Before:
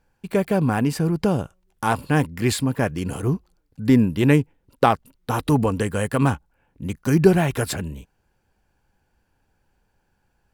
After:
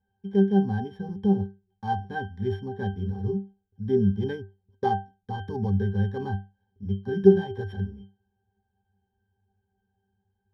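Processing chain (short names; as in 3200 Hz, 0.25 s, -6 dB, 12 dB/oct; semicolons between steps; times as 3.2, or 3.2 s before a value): sample sorter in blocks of 8 samples; octave resonator G, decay 0.27 s; gain +6.5 dB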